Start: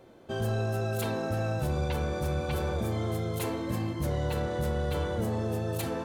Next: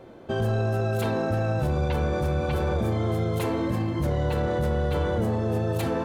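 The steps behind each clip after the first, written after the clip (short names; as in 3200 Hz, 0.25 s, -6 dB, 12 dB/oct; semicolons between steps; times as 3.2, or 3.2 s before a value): high shelf 4200 Hz -10 dB; limiter -26 dBFS, peak gain reduction 4 dB; gain +8 dB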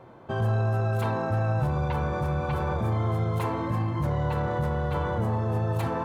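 graphic EQ 125/1000/2000 Hz +10/+12/+3 dB; gain -7.5 dB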